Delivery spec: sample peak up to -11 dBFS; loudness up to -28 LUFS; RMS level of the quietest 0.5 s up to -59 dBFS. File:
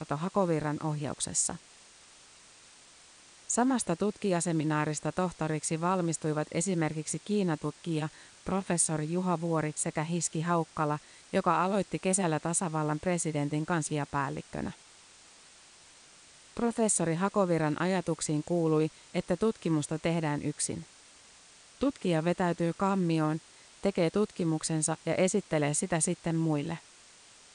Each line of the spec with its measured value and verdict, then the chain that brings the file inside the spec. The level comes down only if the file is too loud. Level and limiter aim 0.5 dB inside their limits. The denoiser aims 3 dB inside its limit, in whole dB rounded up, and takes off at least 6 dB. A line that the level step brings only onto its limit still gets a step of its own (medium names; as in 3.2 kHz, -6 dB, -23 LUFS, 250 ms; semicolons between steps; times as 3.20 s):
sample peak -13.5 dBFS: pass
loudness -30.5 LUFS: pass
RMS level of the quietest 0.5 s -56 dBFS: fail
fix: noise reduction 6 dB, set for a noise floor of -56 dBFS